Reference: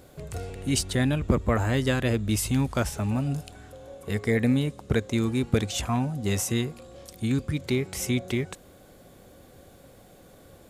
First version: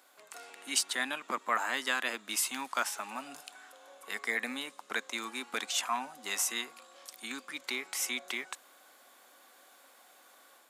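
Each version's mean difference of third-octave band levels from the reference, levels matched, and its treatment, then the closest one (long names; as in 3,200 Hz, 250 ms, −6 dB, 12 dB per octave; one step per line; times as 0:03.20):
11.5 dB: Butterworth high-pass 250 Hz 36 dB per octave
low shelf with overshoot 670 Hz −13.5 dB, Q 1.5
automatic gain control gain up to 4 dB
level −5 dB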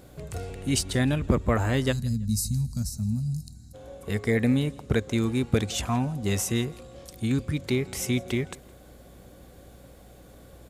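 2.5 dB: gain on a spectral selection 0:01.92–0:03.75, 250–3,800 Hz −26 dB
mains hum 60 Hz, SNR 25 dB
on a send: repeating echo 165 ms, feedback 30%, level −24 dB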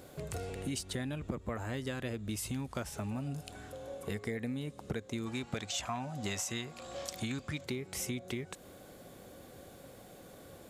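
6.5 dB: gain on a spectral selection 0:05.27–0:07.64, 550–8,200 Hz +8 dB
low-shelf EQ 72 Hz −10 dB
downward compressor 6 to 1, threshold −35 dBFS, peak gain reduction 17 dB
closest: second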